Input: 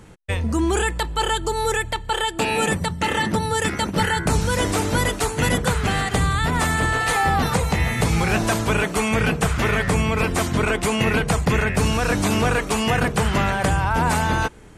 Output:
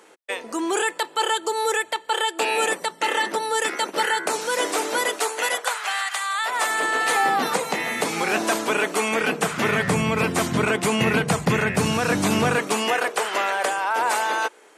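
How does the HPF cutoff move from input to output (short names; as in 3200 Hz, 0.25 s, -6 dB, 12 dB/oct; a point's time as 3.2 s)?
HPF 24 dB/oct
5.13 s 360 Hz
6.13 s 990 Hz
7.03 s 260 Hz
9.26 s 260 Hz
9.86 s 120 Hz
12.47 s 120 Hz
13.03 s 410 Hz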